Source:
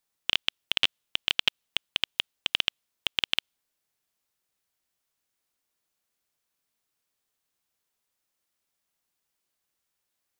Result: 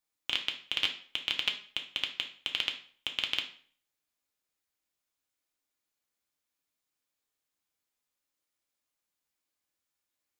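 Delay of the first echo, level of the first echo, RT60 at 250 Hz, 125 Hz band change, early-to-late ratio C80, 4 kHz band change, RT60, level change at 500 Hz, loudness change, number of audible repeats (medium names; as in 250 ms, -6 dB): no echo, no echo, 0.50 s, -6.5 dB, 15.0 dB, -5.0 dB, 0.50 s, -5.0 dB, -4.5 dB, no echo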